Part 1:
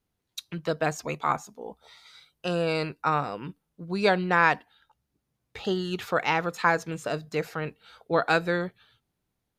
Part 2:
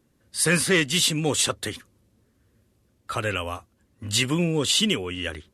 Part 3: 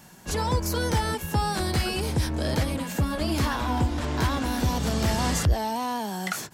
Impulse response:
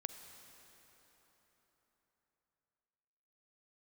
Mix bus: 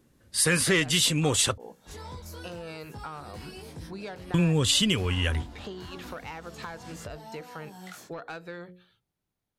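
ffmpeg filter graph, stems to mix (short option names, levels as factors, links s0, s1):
-filter_complex "[0:a]bandreject=f=60:t=h:w=6,bandreject=f=120:t=h:w=6,bandreject=f=180:t=h:w=6,bandreject=f=240:t=h:w=6,bandreject=f=300:t=h:w=6,bandreject=f=360:t=h:w=6,bandreject=f=420:t=h:w=6,bandreject=f=480:t=h:w=6,bandreject=f=540:t=h:w=6,volume=0.596[s0];[1:a]asubboost=boost=5:cutoff=130,volume=1.41,asplit=3[s1][s2][s3];[s1]atrim=end=1.58,asetpts=PTS-STARTPTS,afade=t=out:st=1.576:d=0.004:c=hsin[s4];[s2]atrim=start=1.58:end=4.34,asetpts=PTS-STARTPTS,volume=0[s5];[s3]atrim=start=4.34,asetpts=PTS-STARTPTS,afade=t=in:d=0.004:c=hsin[s6];[s4][s5][s6]concat=n=3:v=0:a=1[s7];[2:a]flanger=delay=18.5:depth=4.4:speed=0.85,asoftclip=type=tanh:threshold=0.112,adelay=1600,volume=0.282[s8];[s0][s8]amix=inputs=2:normalize=0,asoftclip=type=tanh:threshold=0.1,acompressor=threshold=0.0158:ratio=10,volume=1[s9];[s7][s9]amix=inputs=2:normalize=0,acompressor=threshold=0.0794:ratio=2.5"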